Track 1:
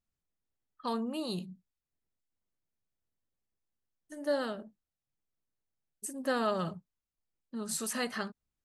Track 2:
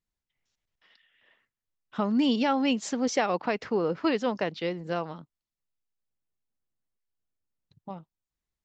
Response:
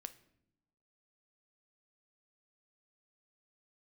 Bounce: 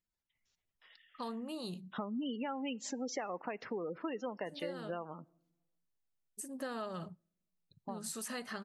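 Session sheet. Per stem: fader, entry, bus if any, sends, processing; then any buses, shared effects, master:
-4.5 dB, 0.35 s, send -19 dB, dry
-1.5 dB, 0.00 s, send -8.5 dB, low shelf 210 Hz -7 dB; spectral gate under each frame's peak -20 dB strong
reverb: on, pre-delay 7 ms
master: compressor 4:1, threshold -38 dBFS, peak gain reduction 14 dB

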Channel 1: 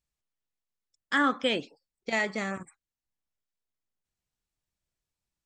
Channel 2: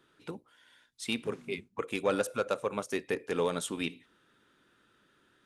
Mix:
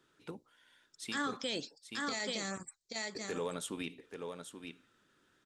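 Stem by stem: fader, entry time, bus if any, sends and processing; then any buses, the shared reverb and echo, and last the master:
-6.0 dB, 0.00 s, no send, echo send -7 dB, band shelf 5500 Hz +15 dB 1.3 oct
-4.5 dB, 0.00 s, muted 1.37–3.15, no send, echo send -9 dB, dry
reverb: off
echo: echo 0.831 s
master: limiter -27 dBFS, peak gain reduction 10 dB

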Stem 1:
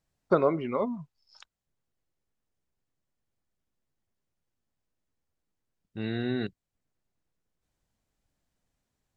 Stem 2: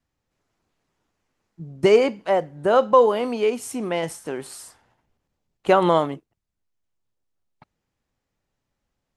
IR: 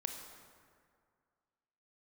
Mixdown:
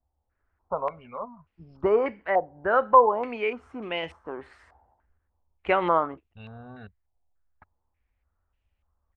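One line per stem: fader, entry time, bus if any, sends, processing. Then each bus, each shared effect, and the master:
-5.5 dB, 0.40 s, no send, fixed phaser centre 820 Hz, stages 4
-7.5 dB, 0.00 s, no send, dry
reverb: off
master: resonant low shelf 100 Hz +9 dB, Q 3; stepped low-pass 3.4 Hz 800–2700 Hz

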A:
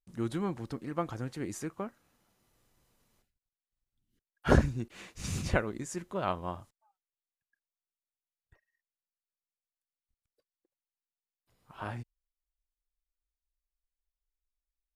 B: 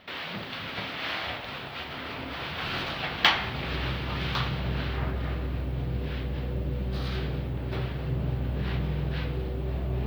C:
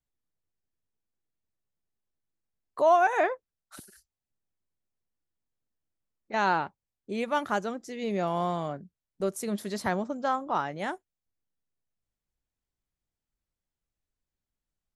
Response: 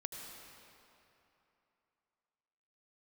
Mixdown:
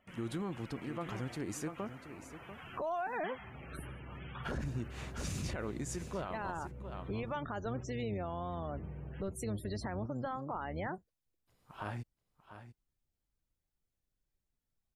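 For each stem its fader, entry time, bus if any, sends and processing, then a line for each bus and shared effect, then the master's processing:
-1.0 dB, 0.00 s, no bus, no send, echo send -13 dB, limiter -19 dBFS, peak gain reduction 9.5 dB
-15.5 dB, 0.00 s, bus A, no send, no echo send, bell 4500 Hz -14 dB 0.42 oct
-0.5 dB, 0.00 s, bus A, no send, no echo send, octaver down 1 oct, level 0 dB
bus A: 0.0 dB, loudest bins only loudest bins 64; compressor 4:1, threshold -32 dBFS, peak gain reduction 12.5 dB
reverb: off
echo: echo 0.692 s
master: limiter -29.5 dBFS, peak gain reduction 10 dB

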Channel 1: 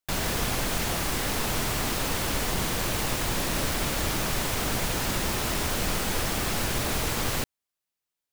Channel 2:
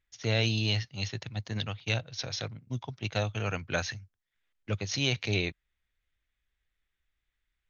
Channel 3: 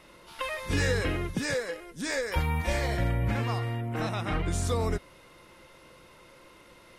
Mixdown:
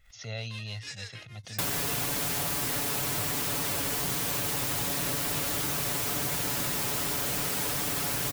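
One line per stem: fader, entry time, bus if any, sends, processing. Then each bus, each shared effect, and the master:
0.0 dB, 1.50 s, no send, HPF 68 Hz 12 dB/oct; high shelf 8300 Hz +9.5 dB; comb 7 ms, depth 68%
-12.5 dB, 0.00 s, no send, comb 1.5 ms, depth 74%; backwards sustainer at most 96 dB/s
-1.0 dB, 0.10 s, no send, band-pass 5100 Hz, Q 1.2; beating tremolo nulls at 6.4 Hz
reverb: off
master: compressor, threshold -27 dBFS, peak gain reduction 7 dB

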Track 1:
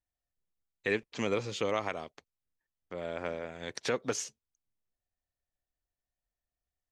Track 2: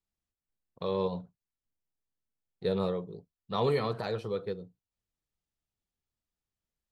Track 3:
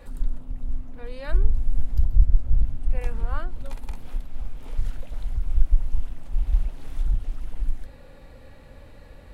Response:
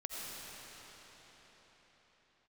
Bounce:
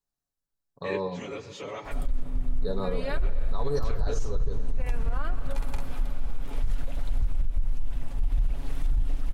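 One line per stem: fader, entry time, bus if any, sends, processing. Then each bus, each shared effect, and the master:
-7.0 dB, 0.00 s, send -15.5 dB, phase scrambler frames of 50 ms
-0.5 dB, 0.00 s, send -15.5 dB, Chebyshev band-stop 1700–3800 Hz, order 4
+1.0 dB, 1.85 s, send -8 dB, compressor, threshold -16 dBFS, peak gain reduction 9.5 dB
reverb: on, pre-delay 45 ms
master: comb 7.1 ms, depth 46%; limiter -17 dBFS, peak gain reduction 11.5 dB

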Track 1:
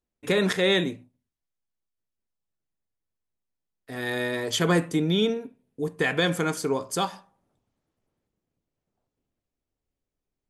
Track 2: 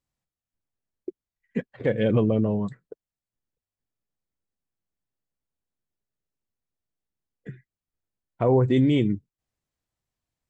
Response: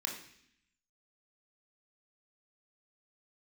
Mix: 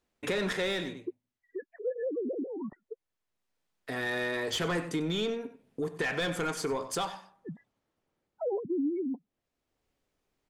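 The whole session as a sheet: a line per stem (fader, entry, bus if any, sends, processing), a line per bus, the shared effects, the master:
-0.5 dB, 0.00 s, no send, echo send -16 dB, overdrive pedal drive 18 dB, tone 4000 Hz, clips at -9.5 dBFS; auto duck -10 dB, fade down 0.45 s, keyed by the second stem
-2.0 dB, 0.00 s, no send, no echo send, sine-wave speech; spectral gate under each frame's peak -15 dB strong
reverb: off
echo: echo 95 ms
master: low shelf 200 Hz +7.5 dB; compressor 2:1, threshold -39 dBFS, peak gain reduction 13.5 dB

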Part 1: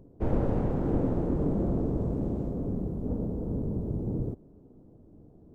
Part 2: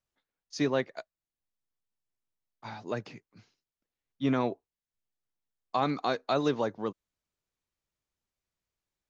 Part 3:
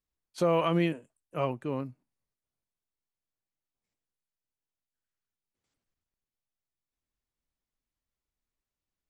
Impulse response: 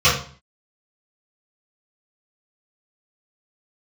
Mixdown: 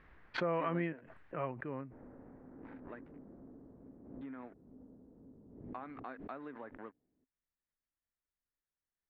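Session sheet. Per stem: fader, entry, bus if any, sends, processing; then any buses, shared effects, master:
-17.5 dB, 1.70 s, bus A, no send, dry
-5.0 dB, 0.00 s, bus A, no send, crossover distortion -42.5 dBFS; auto duck -11 dB, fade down 1.30 s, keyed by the third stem
-0.5 dB, 0.00 s, no bus, no send, low shelf 200 Hz +8.5 dB
bus A: 0.0 dB, bell 260 Hz +10 dB 0.32 oct; compressor 5:1, threshold -33 dBFS, peak gain reduction 10.5 dB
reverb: off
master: ladder low-pass 2100 Hz, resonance 50%; low shelf 170 Hz -9.5 dB; backwards sustainer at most 58 dB/s

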